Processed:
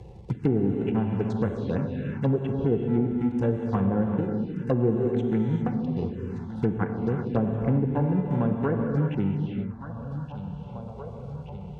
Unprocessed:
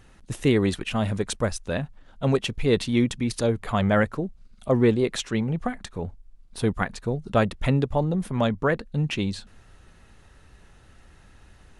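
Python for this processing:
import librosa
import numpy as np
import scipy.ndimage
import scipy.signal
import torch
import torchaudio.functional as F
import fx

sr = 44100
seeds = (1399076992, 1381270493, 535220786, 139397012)

p1 = fx.wiener(x, sr, points=41)
p2 = fx.sample_hold(p1, sr, seeds[0], rate_hz=1100.0, jitter_pct=0)
p3 = p1 + (p2 * librosa.db_to_amplitude(-8.0))
p4 = fx.env_lowpass_down(p3, sr, base_hz=660.0, full_db=-15.0)
p5 = scipy.signal.sosfilt(scipy.signal.butter(2, 55.0, 'highpass', fs=sr, output='sos'), p4)
p6 = fx.air_absorb(p5, sr, metres=68.0)
p7 = fx.echo_feedback(p6, sr, ms=1174, feedback_pct=46, wet_db=-20)
p8 = fx.rev_gated(p7, sr, seeds[1], gate_ms=430, shape='flat', drr_db=3.0)
p9 = fx.env_phaser(p8, sr, low_hz=240.0, high_hz=4800.0, full_db=-19.5)
p10 = fx.notch_comb(p9, sr, f0_hz=620.0)
p11 = fx.band_squash(p10, sr, depth_pct=70)
y = p11 * librosa.db_to_amplitude(-3.0)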